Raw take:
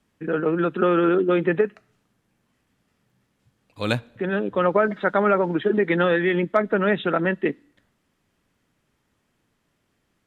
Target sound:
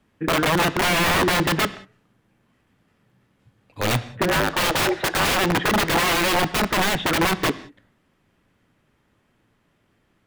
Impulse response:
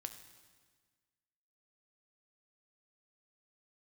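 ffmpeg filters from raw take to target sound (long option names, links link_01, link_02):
-filter_complex "[0:a]asplit=3[link_01][link_02][link_03];[link_01]afade=type=out:start_time=4.27:duration=0.02[link_04];[link_02]afreqshift=160,afade=type=in:start_time=4.27:duration=0.02,afade=type=out:start_time=5.32:duration=0.02[link_05];[link_03]afade=type=in:start_time=5.32:duration=0.02[link_06];[link_04][link_05][link_06]amix=inputs=3:normalize=0,aeval=exprs='(mod(8.91*val(0)+1,2)-1)/8.91':channel_layout=same,asplit=2[link_07][link_08];[1:a]atrim=start_sample=2205,afade=type=out:start_time=0.25:duration=0.01,atrim=end_sample=11466,lowpass=4000[link_09];[link_08][link_09]afir=irnorm=-1:irlink=0,volume=3.5dB[link_10];[link_07][link_10]amix=inputs=2:normalize=0"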